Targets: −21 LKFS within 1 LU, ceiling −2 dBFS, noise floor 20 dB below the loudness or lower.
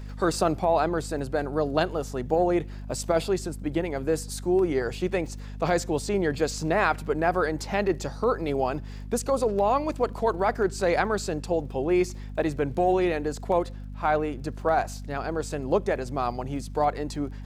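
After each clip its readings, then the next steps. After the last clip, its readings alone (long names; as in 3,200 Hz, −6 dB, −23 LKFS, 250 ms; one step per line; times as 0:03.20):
crackle rate 30 per second; mains hum 50 Hz; hum harmonics up to 250 Hz; level of the hum −35 dBFS; integrated loudness −26.5 LKFS; sample peak −8.5 dBFS; target loudness −21.0 LKFS
→ click removal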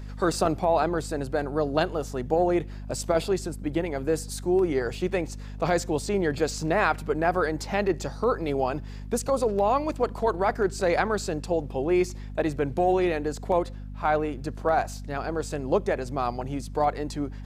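crackle rate 0.057 per second; mains hum 50 Hz; hum harmonics up to 250 Hz; level of the hum −35 dBFS
→ hum removal 50 Hz, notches 5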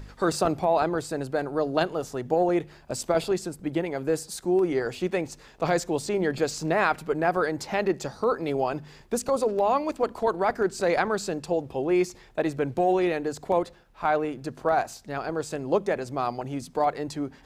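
mains hum none found; integrated loudness −27.0 LKFS; sample peak −9.0 dBFS; target loudness −21.0 LKFS
→ level +6 dB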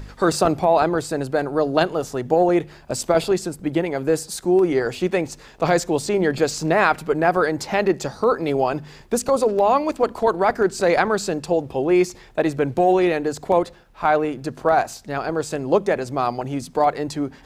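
integrated loudness −21.0 LKFS; sample peak −3.0 dBFS; background noise floor −46 dBFS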